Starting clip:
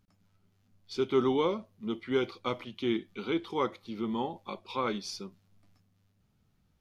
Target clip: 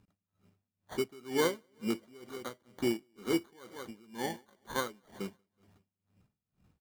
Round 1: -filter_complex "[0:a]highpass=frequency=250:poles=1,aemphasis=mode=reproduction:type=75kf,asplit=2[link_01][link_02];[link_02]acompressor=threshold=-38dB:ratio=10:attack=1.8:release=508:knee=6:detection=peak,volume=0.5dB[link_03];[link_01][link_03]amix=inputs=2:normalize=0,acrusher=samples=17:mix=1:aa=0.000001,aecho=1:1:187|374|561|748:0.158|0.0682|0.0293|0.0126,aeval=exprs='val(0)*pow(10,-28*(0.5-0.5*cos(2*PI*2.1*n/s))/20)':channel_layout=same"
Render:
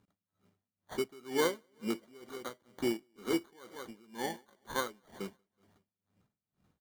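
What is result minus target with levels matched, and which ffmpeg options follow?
125 Hz band −3.0 dB
-filter_complex "[0:a]highpass=frequency=72:poles=1,aemphasis=mode=reproduction:type=75kf,asplit=2[link_01][link_02];[link_02]acompressor=threshold=-38dB:ratio=10:attack=1.8:release=508:knee=6:detection=peak,volume=0.5dB[link_03];[link_01][link_03]amix=inputs=2:normalize=0,acrusher=samples=17:mix=1:aa=0.000001,aecho=1:1:187|374|561|748:0.158|0.0682|0.0293|0.0126,aeval=exprs='val(0)*pow(10,-28*(0.5-0.5*cos(2*PI*2.1*n/s))/20)':channel_layout=same"

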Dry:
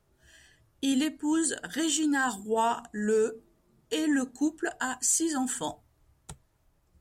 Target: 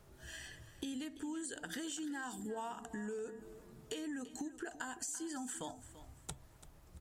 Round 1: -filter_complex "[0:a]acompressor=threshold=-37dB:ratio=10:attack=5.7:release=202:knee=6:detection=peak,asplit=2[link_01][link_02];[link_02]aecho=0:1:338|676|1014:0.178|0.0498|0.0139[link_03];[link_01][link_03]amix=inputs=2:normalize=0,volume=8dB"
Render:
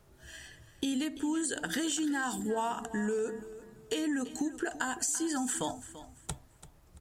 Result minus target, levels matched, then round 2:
downward compressor: peak gain reduction −10.5 dB
-filter_complex "[0:a]acompressor=threshold=-48.5dB:ratio=10:attack=5.7:release=202:knee=6:detection=peak,asplit=2[link_01][link_02];[link_02]aecho=0:1:338|676|1014:0.178|0.0498|0.0139[link_03];[link_01][link_03]amix=inputs=2:normalize=0,volume=8dB"

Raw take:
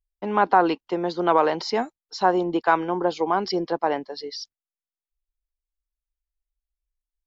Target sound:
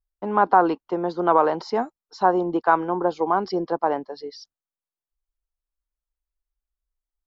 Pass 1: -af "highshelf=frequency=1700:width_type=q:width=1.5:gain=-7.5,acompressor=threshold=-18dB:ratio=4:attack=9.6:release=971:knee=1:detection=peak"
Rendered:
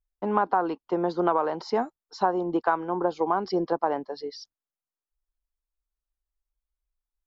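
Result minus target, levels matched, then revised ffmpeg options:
downward compressor: peak gain reduction +8.5 dB
-af "highshelf=frequency=1700:width_type=q:width=1.5:gain=-7.5"

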